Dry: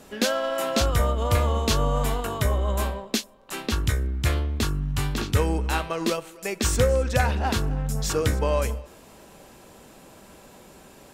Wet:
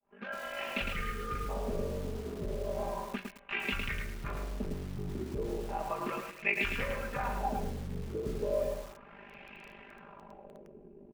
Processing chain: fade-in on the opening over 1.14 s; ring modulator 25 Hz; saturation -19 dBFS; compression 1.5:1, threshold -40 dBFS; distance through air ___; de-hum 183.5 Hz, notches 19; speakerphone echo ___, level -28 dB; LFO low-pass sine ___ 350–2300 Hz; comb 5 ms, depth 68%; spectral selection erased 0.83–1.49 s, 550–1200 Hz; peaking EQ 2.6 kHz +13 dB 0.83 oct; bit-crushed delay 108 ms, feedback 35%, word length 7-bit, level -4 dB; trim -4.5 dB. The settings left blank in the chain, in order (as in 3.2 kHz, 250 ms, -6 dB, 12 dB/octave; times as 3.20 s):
97 m, 160 ms, 0.34 Hz